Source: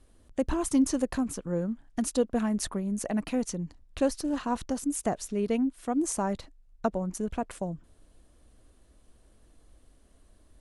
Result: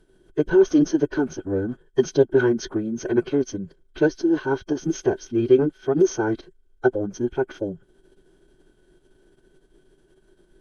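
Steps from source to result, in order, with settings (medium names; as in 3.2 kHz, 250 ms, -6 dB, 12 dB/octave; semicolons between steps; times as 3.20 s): formant-preserving pitch shift -10 st; small resonant body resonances 380/1500/3200 Hz, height 17 dB, ringing for 40 ms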